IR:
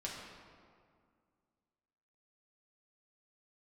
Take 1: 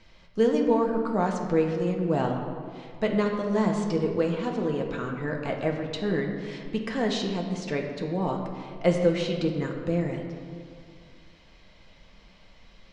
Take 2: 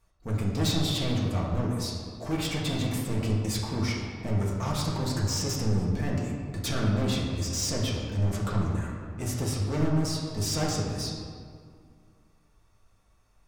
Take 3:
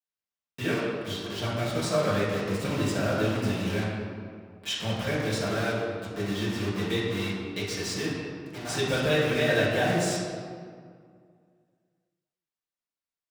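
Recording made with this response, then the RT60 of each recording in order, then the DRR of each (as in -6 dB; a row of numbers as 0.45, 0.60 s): 2; 2.1, 2.1, 2.1 s; 1.0, -4.5, -9.5 dB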